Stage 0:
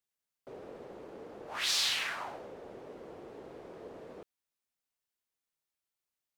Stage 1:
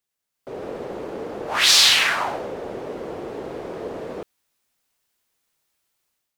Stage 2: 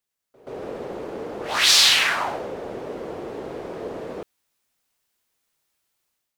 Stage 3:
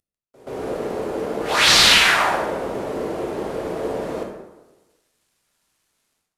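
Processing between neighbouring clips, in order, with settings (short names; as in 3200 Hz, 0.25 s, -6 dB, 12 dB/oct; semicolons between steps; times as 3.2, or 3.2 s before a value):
AGC gain up to 10 dB; gain +6 dB
pre-echo 0.128 s -18 dB; gain -1 dB
CVSD 64 kbps; plate-style reverb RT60 1.1 s, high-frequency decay 0.6×, DRR 0.5 dB; gain +3.5 dB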